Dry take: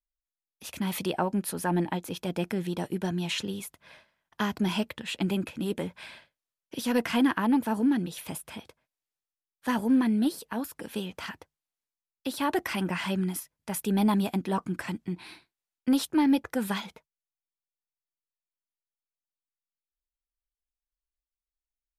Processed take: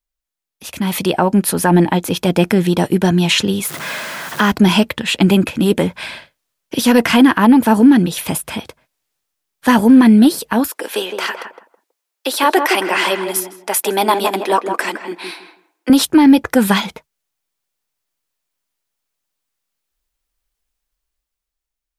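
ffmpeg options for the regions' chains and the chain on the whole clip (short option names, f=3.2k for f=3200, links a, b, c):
-filter_complex "[0:a]asettb=1/sr,asplit=3[a][b][c];[a]atrim=end=3.654[d];[b]atrim=start=3.65:end=4.52,asetpts=PTS-STARTPTS,afade=t=in:d=0.004:c=qsin,afade=t=out:st=0.866:d=0.004:c=qsin,aeval=exprs='val(0)+0.5*0.0112*sgn(val(0))':c=same,highpass=f=140:w=0.5412,highpass=f=140:w=1.3066,equalizer=f=1.4k:w=2:g=5[e];[c]atrim=start=4.516[f];[d][e]acrossfade=d=0.004:c1=hsin:c2=qsin[g];[g][f]acrossfade=d=0.004:c1=qsin:c2=hsin,asettb=1/sr,asplit=3[h][i][j];[h]atrim=end=10.684[k];[i]atrim=start=10.68:end=15.9,asetpts=PTS-STARTPTS,afade=t=in:d=0.004:c=qsin,afade=t=out:st=5.216:d=0.004:c=qsin,highpass=f=370:w=0.5412,highpass=f=370:w=1.3066,asplit=2[l][m];[m]adelay=162,lowpass=f=1.1k:p=1,volume=-5dB,asplit=2[n][o];[o]adelay=162,lowpass=f=1.1k:p=1,volume=0.24,asplit=2[p][q];[q]adelay=162,lowpass=f=1.1k:p=1,volume=0.24[r];[l][n][p][r]amix=inputs=4:normalize=0,atrim=end_sample=230202[s];[j]atrim=start=15.896[t];[k][s]acrossfade=d=0.004:c1=hsin:c2=qsin[u];[u][t]acrossfade=d=0.004:c1=qsin:c2=hsin,dynaudnorm=f=170:g=13:m=8.5dB,alimiter=level_in=9.5dB:limit=-1dB:release=50:level=0:latency=1,volume=-1dB"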